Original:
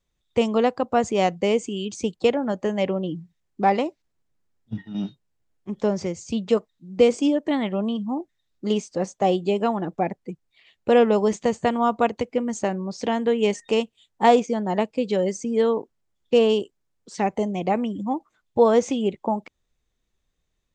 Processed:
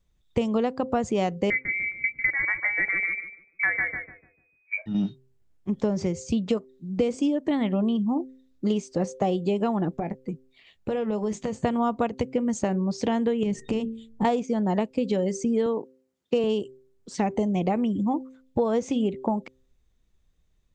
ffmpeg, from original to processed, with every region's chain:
-filter_complex "[0:a]asettb=1/sr,asplit=3[a][b][c];[a]atrim=end=1.504[d];[b]atrim=start=1.5:end=4.86,asetpts=PTS-STARTPTS,afade=t=in:d=0.004:c=qsin,afade=t=out:st=3.356:d=0.004:c=qsin,lowpass=f=2.1k:t=q:w=0.5098,lowpass=f=2.1k:t=q:w=0.6013,lowpass=f=2.1k:t=q:w=0.9,lowpass=f=2.1k:t=q:w=2.563,afreqshift=-2500,asplit=2[e][f];[f]adelay=148,lowpass=f=940:p=1,volume=-3dB,asplit=2[g][h];[h]adelay=148,lowpass=f=940:p=1,volume=0.38,asplit=2[i][j];[j]adelay=148,lowpass=f=940:p=1,volume=0.38,asplit=2[k][l];[l]adelay=148,lowpass=f=940:p=1,volume=0.38,asplit=2[m][n];[n]adelay=148,lowpass=f=940:p=1,volume=0.38[o];[e][g][i][k][m][o]amix=inputs=6:normalize=0,atrim=end_sample=148176[p];[c]atrim=start=4.856[q];[d][p]acrossfade=d=0.004:c1=hsin:c2=qsin[r];[r][q]acrossfade=d=0.004:c1=qsin:c2=hsin,asettb=1/sr,asplit=3[s][t][u];[s]atrim=end=9.994[v];[t]atrim=start=9.99:end=11.62,asetpts=PTS-STARTPTS,afade=t=in:d=0.004:c=qsin,afade=t=out:st=1.626:d=0.004:c=qsin,acompressor=threshold=-29dB:ratio=4:attack=3.2:release=140:knee=1:detection=peak,asplit=2[w][x];[x]adelay=19,volume=-12.5dB[y];[w][y]amix=inputs=2:normalize=0,atrim=end_sample=71883[z];[u]atrim=start=11.616[aa];[v][z]acrossfade=d=0.004:c1=hsin:c2=qsin[ab];[ab][aa]acrossfade=d=0.004:c1=qsin:c2=hsin,asettb=1/sr,asplit=3[ac][ad][ae];[ac]atrim=end=13.434[af];[ad]atrim=start=13.43:end=14.25,asetpts=PTS-STARTPTS,afade=t=in:d=0.004:c=qsin,afade=t=out:st=0.816:d=0.004:c=qsin,bass=f=250:g=15,treble=f=4k:g=-1,acompressor=threshold=-26dB:ratio=3:attack=3.2:release=140:knee=1:detection=peak,bandreject=f=75.03:t=h:w=4,bandreject=f=150.06:t=h:w=4,bandreject=f=225.09:t=h:w=4,bandreject=f=300.12:t=h:w=4,bandreject=f=375.15:t=h:w=4,bandreject=f=450.18:t=h:w=4[ag];[ae]atrim=start=14.246[ah];[af][ag]acrossfade=d=0.004:c1=hsin:c2=qsin[ai];[ai][ah]acrossfade=d=0.004:c1=qsin:c2=hsin,asettb=1/sr,asplit=3[aj][ak][al];[aj]atrim=end=15.664[am];[ak]atrim=start=15.66:end=16.44,asetpts=PTS-STARTPTS,afade=t=in:d=0.004:c=qsin,afade=t=out:st=0.776:d=0.004:c=qsin,highpass=190,bandreject=f=3.4k:w=16[an];[al]atrim=start=16.436[ao];[am][an]acrossfade=d=0.004:c1=hsin:c2=qsin[ap];[ap][ao]acrossfade=d=0.004:c1=qsin:c2=hsin,lowshelf=f=240:g=9.5,bandreject=f=130.4:t=h:w=4,bandreject=f=260.8:t=h:w=4,bandreject=f=391.2:t=h:w=4,bandreject=f=521.6:t=h:w=4,acompressor=threshold=-21dB:ratio=6"

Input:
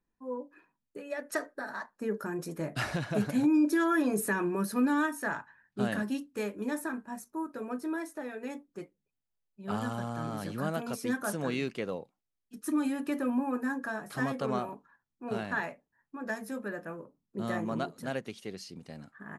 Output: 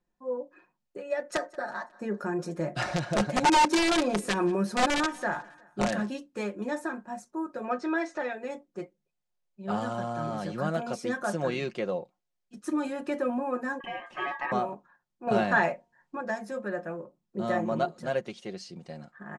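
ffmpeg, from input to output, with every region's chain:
-filter_complex "[0:a]asettb=1/sr,asplit=3[a][b][c];[a]atrim=end=1.174[d];[b]atrim=start=1.17:end=6.08,asetpts=PTS-STARTPTS,afade=t=in:d=0.004:c=qsin,afade=t=out:st=4.906:d=0.004:c=qsin,aeval=exprs='(mod(10.6*val(0)+1,2)-1)/10.6':c=same,aecho=1:1:181|362|543:0.0708|0.0347|0.017,atrim=end_sample=216531[e];[c]atrim=start=6.076[f];[d][e]acrossfade=d=0.004:c1=hsin:c2=qsin[g];[g][f]acrossfade=d=0.004:c1=qsin:c2=hsin,asettb=1/sr,asplit=3[h][i][j];[h]atrim=end=7.644[k];[i]atrim=start=7.64:end=8.33,asetpts=PTS-STARTPTS,afade=t=in:d=0.004:c=qsin,afade=t=out:st=0.686:d=0.004:c=qsin,lowpass=f=7.1k:w=0.5412,lowpass=f=7.1k:w=1.3066,equalizer=f=2.1k:t=o:w=3:g=9,acompressor=mode=upward:threshold=-42dB:ratio=2.5:attack=3.2:release=140:knee=2.83:detection=peak[l];[j]atrim=start=8.326[m];[k][l]acrossfade=d=0.004:c1=hsin:c2=qsin[n];[n][m]acrossfade=d=0.004:c1=qsin:c2=hsin,asettb=1/sr,asplit=3[o][p][q];[o]atrim=end=13.804[r];[p]atrim=start=13.8:end=14.52,asetpts=PTS-STARTPTS,afade=t=in:d=0.004:c=qsin,afade=t=out:st=0.716:d=0.004:c=qsin,lowpass=f=1.2k:p=1,aeval=exprs='val(0)*sin(2*PI*1400*n/s)':c=same,lowshelf=f=210:t=q:w=1.5:g=-7[s];[q]atrim=start=14.516[t];[r][s]acrossfade=d=0.004:c1=hsin:c2=qsin[u];[u][t]acrossfade=d=0.004:c1=qsin:c2=hsin,asettb=1/sr,asplit=3[v][w][x];[v]atrim=end=15.274[y];[w]atrim=start=15.27:end=16.21,asetpts=PTS-STARTPTS,afade=t=in:d=0.004:c=qsin,afade=t=out:st=0.936:d=0.004:c=qsin,bandreject=f=233.1:t=h:w=4,bandreject=f=466.2:t=h:w=4,bandreject=f=699.3:t=h:w=4,bandreject=f=932.4:t=h:w=4,acontrast=65[z];[x]atrim=start=16.206[aa];[y][z]acrossfade=d=0.004:c1=hsin:c2=qsin[ab];[ab][aa]acrossfade=d=0.004:c1=qsin:c2=hsin,lowpass=f=8.2k:w=0.5412,lowpass=f=8.2k:w=1.3066,equalizer=f=640:w=1.6:g=6.5,aecho=1:1:5.6:0.54"

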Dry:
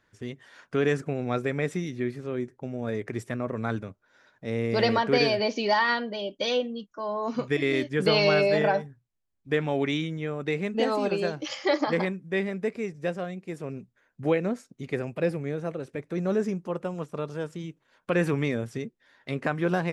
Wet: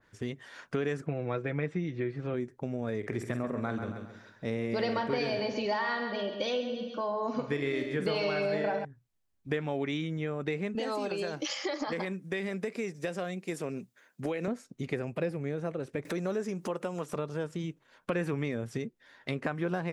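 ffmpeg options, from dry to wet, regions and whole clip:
-filter_complex "[0:a]asettb=1/sr,asplit=3[a][b][c];[a]atrim=end=1.064[d];[b]atrim=start=1.06:end=2.34,asetpts=PTS-STARTPTS,afade=t=in:d=0.004:c=qsin,afade=t=out:st=1.276:d=0.004:c=qsin,lowpass=3.4k,aecho=1:1:6.1:0.52,atrim=end_sample=56448[e];[c]atrim=start=2.336[f];[d][e]acrossfade=d=0.004:c1=hsin:c2=qsin[g];[g][f]acrossfade=d=0.004:c1=qsin:c2=hsin,asettb=1/sr,asplit=3[h][i][j];[h]atrim=end=2.984[k];[i]atrim=start=2.98:end=8.85,asetpts=PTS-STARTPTS,afade=t=in:d=0.004:c=qsin,afade=t=out:st=5.866:d=0.004:c=qsin,asplit=2[l][m];[m]adelay=49,volume=-10.5dB[n];[l][n]amix=inputs=2:normalize=0,atrim=end_sample=258867,aecho=1:1:135|270|405|540:0.335|0.117|0.041|0.0144,atrim=end_sample=258867[o];[j]atrim=start=8.846[p];[k][o]acrossfade=d=0.004:c1=hsin:c2=qsin[q];[q][p]acrossfade=d=0.004:c1=qsin:c2=hsin,asettb=1/sr,asplit=3[r][s][t];[r]atrim=end=10.754[u];[s]atrim=start=10.75:end=14.48,asetpts=PTS-STARTPTS,afade=t=in:d=0.004:c=qsin,afade=t=out:st=3.726:d=0.004:c=qsin,highpass=170,highshelf=f=3.1k:g=9.5,acompressor=threshold=-27dB:ratio=4:attack=3.2:release=140:knee=1:detection=peak[v];[t]atrim=start=14.476[w];[u][v]acrossfade=d=0.004:c1=hsin:c2=qsin[x];[x][w]acrossfade=d=0.004:c1=qsin:c2=hsin,asettb=1/sr,asplit=3[y][z][aa];[y]atrim=end=16.054[ab];[z]atrim=start=16.05:end=17.16,asetpts=PTS-STARTPTS,afade=t=in:d=0.004:c=qsin,afade=t=out:st=1.106:d=0.004:c=qsin,highpass=f=280:p=1,acompressor=mode=upward:threshold=-29dB:ratio=2.5:attack=3.2:release=140:knee=2.83:detection=peak,highshelf=f=4.4k:g=7[ac];[aa]atrim=start=17.156[ad];[ab][ac]acrossfade=d=0.004:c1=hsin:c2=qsin[ae];[ae][ad]acrossfade=d=0.004:c1=qsin:c2=hsin,acompressor=threshold=-34dB:ratio=3,adynamicequalizer=threshold=0.00398:dfrequency=2400:dqfactor=0.7:tfrequency=2400:tqfactor=0.7:attack=5:release=100:ratio=0.375:range=2:mode=cutabove:tftype=highshelf,volume=3dB"

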